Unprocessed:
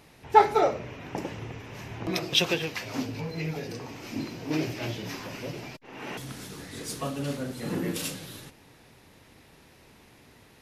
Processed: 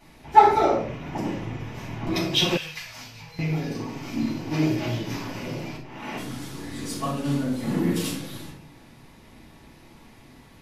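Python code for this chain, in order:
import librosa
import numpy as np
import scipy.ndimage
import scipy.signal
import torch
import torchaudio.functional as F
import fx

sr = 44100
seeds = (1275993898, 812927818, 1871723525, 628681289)

p1 = fx.room_shoebox(x, sr, seeds[0], volume_m3=410.0, walls='furnished', distance_m=7.9)
p2 = 10.0 ** (-6.5 / 20.0) * np.tanh(p1 / 10.0 ** (-6.5 / 20.0))
p3 = p1 + F.gain(torch.from_numpy(p2), -12.0).numpy()
p4 = fx.tone_stack(p3, sr, knobs='10-0-10', at=(2.57, 3.39))
y = F.gain(torch.from_numpy(p4), -10.0).numpy()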